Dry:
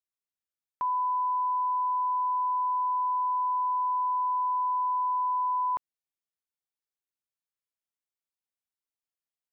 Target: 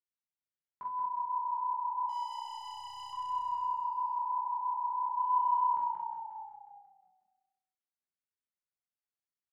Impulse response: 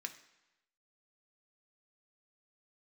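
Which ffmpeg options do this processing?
-filter_complex "[0:a]aemphasis=mode=reproduction:type=bsi,asettb=1/sr,asplit=3[a][b][c];[a]atrim=end=2.094[d];[b]atrim=start=2.09:end=3.13,asetpts=PTS-STARTPTS,afade=t=in:d=0.004:c=qsin,afade=t=out:st=1.036:d=0.004:c=qsin,aeval=exprs='(tanh(89.1*val(0)+0.25)-tanh(0.25))/89.1':c=same[e];[c]atrim=start=3.126[f];[d][e]acrossfade=d=0.004:c1=hsin:c2=qsin[g];[g][f]acrossfade=d=0.004:c1=qsin:c2=hsin,asplit=3[h][i][j];[h]afade=t=out:st=5.16:d=0.02[k];[i]acontrast=56,afade=t=in:st=5.16:d=0.02,afade=t=out:st=5.65:d=0.02[l];[j]afade=t=in:st=5.65:d=0.02[m];[k][l][m]amix=inputs=3:normalize=0,flanger=delay=19:depth=3:speed=1.5,asplit=2[n][o];[o]adelay=43,volume=-4.5dB[p];[n][p]amix=inputs=2:normalize=0,asplit=9[q][r][s][t][u][v][w][x][y];[r]adelay=180,afreqshift=-31,volume=-4dB[z];[s]adelay=360,afreqshift=-62,volume=-8.9dB[aa];[t]adelay=540,afreqshift=-93,volume=-13.8dB[ab];[u]adelay=720,afreqshift=-124,volume=-18.6dB[ac];[v]adelay=900,afreqshift=-155,volume=-23.5dB[ad];[w]adelay=1080,afreqshift=-186,volume=-28.4dB[ae];[x]adelay=1260,afreqshift=-217,volume=-33.3dB[af];[y]adelay=1440,afreqshift=-248,volume=-38.2dB[ag];[q][z][aa][ab][ac][ad][ae][af][ag]amix=inputs=9:normalize=0[ah];[1:a]atrim=start_sample=2205,asetrate=36162,aresample=44100[ai];[ah][ai]afir=irnorm=-1:irlink=0,volume=-5dB"

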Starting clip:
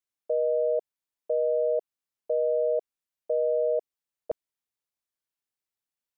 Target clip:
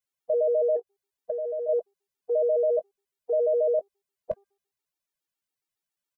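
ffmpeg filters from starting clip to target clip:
-filter_complex "[0:a]asplit=2[a][b];[b]adelay=19,volume=-13.5dB[c];[a][c]amix=inputs=2:normalize=0,bandreject=f=398.7:t=h:w=4,bandreject=f=797.4:t=h:w=4,bandreject=f=1.1961k:t=h:w=4,bandreject=f=1.5948k:t=h:w=4,asettb=1/sr,asplit=3[d][e][f];[d]atrim=end=0.764[g];[e]atrim=start=0.76:end=1.69,asetpts=PTS-STARTPTS,afade=t=in:d=0.004:c=qsin,afade=t=out:st=0.926:d=0.004:c=qsin,acompressor=threshold=-29dB:ratio=6[h];[f]atrim=start=1.686[i];[g][h]acrossfade=d=0.004:c1=hsin:c2=qsin[j];[j][i]acrossfade=d=0.004:c1=qsin:c2=hsin,afftfilt=real='re*gt(sin(2*PI*7.2*pts/sr)*(1-2*mod(floor(b*sr/1024/240),2)),0)':imag='im*gt(sin(2*PI*7.2*pts/sr)*(1-2*mod(floor(b*sr/1024/240),2)),0)':win_size=1024:overlap=0.75,volume=5dB"

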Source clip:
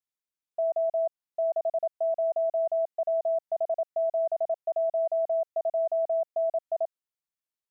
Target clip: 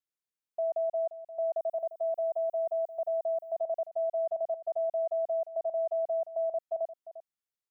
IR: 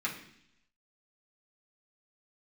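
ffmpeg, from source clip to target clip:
-filter_complex "[0:a]asettb=1/sr,asplit=3[a][b][c];[a]atrim=end=1.574[d];[b]atrim=start=1.57:end=3.57,asetpts=PTS-STARTPTS,afade=t=in:d=0.004:c=qsin,afade=t=out:st=1.996:d=0.004:c=qsin,aemphasis=mode=production:type=50fm[e];[c]atrim=start=3.566[f];[d][e]acrossfade=d=0.004:c1=hsin:c2=qsin[g];[g][f]acrossfade=d=0.004:c1=qsin:c2=hsin,aecho=1:1:349:0.2,volume=-3.5dB"

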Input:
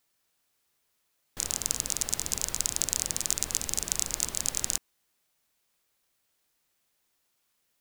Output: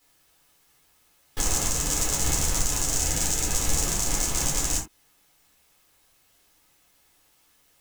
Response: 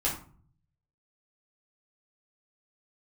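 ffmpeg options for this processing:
-filter_complex "[0:a]alimiter=limit=-9.5dB:level=0:latency=1:release=203,asoftclip=type=tanh:threshold=-15.5dB,asettb=1/sr,asplit=3[a][b][c];[a]atrim=end=2.934[d];[b]atrim=start=2.93:end=3.52,asetpts=PTS-STARTPTS,afade=t=in:d=0.004:c=qsin,afade=t=out:st=0.586:d=0.004:c=qsin,asuperstop=centerf=1100:order=4:qfactor=6.4[e];[c]atrim=start=3.516[f];[d][e]acrossfade=d=0.004:c1=hsin:c2=qsin[g];[g][f]acrossfade=d=0.004:c1=qsin:c2=hsin[h];[1:a]atrim=start_sample=2205,atrim=end_sample=4410[i];[h][i]afir=irnorm=-1:irlink=0,volume=6dB"

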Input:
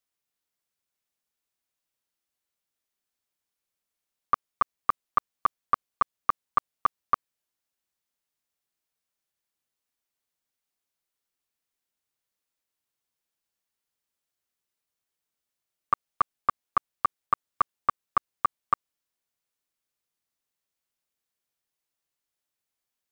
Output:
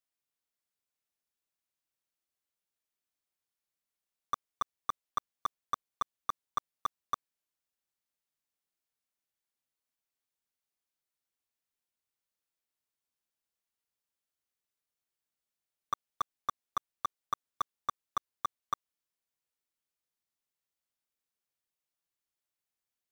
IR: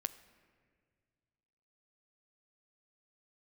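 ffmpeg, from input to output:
-af "asoftclip=type=tanh:threshold=-18dB,acrusher=bits=6:mode=log:mix=0:aa=0.000001,volume=-5.5dB"

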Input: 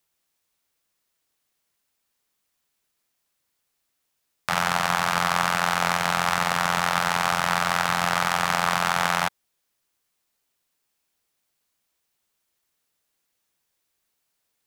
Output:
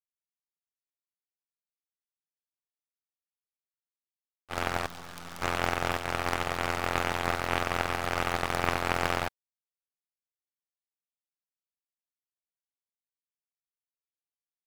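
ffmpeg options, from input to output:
-filter_complex "[0:a]aeval=exprs='0.794*(cos(1*acos(clip(val(0)/0.794,-1,1)))-cos(1*PI/2))+0.355*(cos(4*acos(clip(val(0)/0.794,-1,1)))-cos(4*PI/2))':c=same,agate=range=-33dB:threshold=-17dB:ratio=3:detection=peak,asettb=1/sr,asplit=3[a][b][c];[a]atrim=end=4.864[d];[b]atrim=start=4.86:end=5.42,asetpts=PTS-STARTPTS,afade=t=in:d=0.004:c=qsin,afade=t=out:st=0.556:d=0.004:c=qsin,aeval=exprs='max(val(0),0)':c=same[e];[c]atrim=start=5.416[f];[d][e]acrossfade=d=0.004:c1=hsin:c2=qsin[g];[g][f]acrossfade=d=0.004:c1=qsin:c2=hsin,volume=-3.5dB"

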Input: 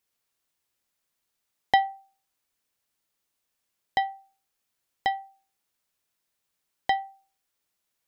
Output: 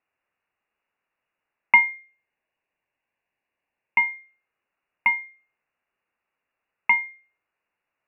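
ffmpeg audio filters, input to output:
-filter_complex "[0:a]lowpass=f=2.5k:t=q:w=0.5098,lowpass=f=2.5k:t=q:w=0.6013,lowpass=f=2.5k:t=q:w=0.9,lowpass=f=2.5k:t=q:w=2.563,afreqshift=-2900,asplit=3[a][b][c];[a]afade=t=out:st=1.79:d=0.02[d];[b]equalizer=f=1.3k:w=6.8:g=-12,afade=t=in:st=1.79:d=0.02,afade=t=out:st=4.05:d=0.02[e];[c]afade=t=in:st=4.05:d=0.02[f];[d][e][f]amix=inputs=3:normalize=0,volume=5.5dB"

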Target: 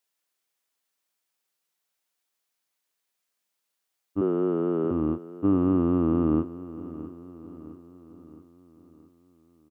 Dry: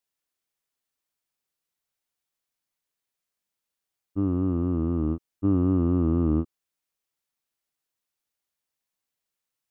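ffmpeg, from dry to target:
-filter_complex "[0:a]highpass=f=330:p=1,asettb=1/sr,asplit=3[a][b][c];[a]atrim=end=4.214[d];[b]atrim=start=4.21:end=4.91,asetpts=PTS-STARTPTS,afade=t=in:d=0.004:c=qsin,afade=t=out:st=0.696:d=0.004:c=qsin,afreqshift=79[e];[c]atrim=start=4.906[f];[d][e]acrossfade=d=0.004:c1=hsin:c2=qsin[g];[g][f]acrossfade=d=0.004:c1=qsin:c2=hsin,aecho=1:1:665|1330|1995|2660|3325:0.158|0.084|0.0445|0.0236|0.0125,volume=5dB"

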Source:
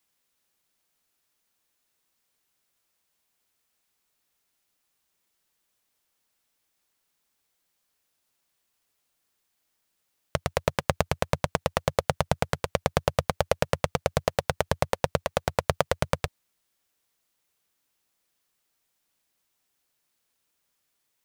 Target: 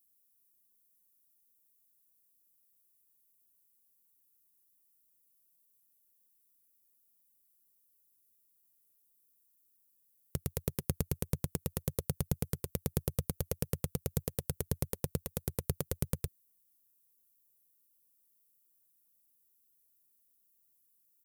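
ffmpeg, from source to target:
-af "firequalizer=gain_entry='entry(380,0);entry(620,-19);entry(12000,12)':delay=0.05:min_phase=1,volume=-4.5dB"

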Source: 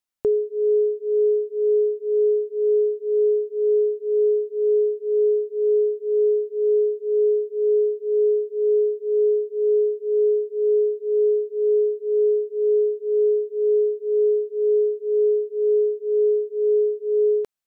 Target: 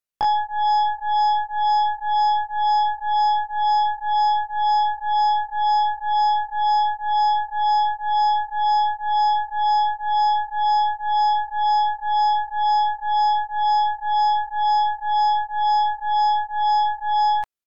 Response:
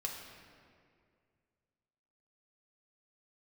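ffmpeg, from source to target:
-af "asetrate=88200,aresample=44100,atempo=0.5,aeval=exprs='0.2*(cos(1*acos(clip(val(0)/0.2,-1,1)))-cos(1*PI/2))+0.0251*(cos(6*acos(clip(val(0)/0.2,-1,1)))-cos(6*PI/2))+0.00251*(cos(8*acos(clip(val(0)/0.2,-1,1)))-cos(8*PI/2))':c=same"

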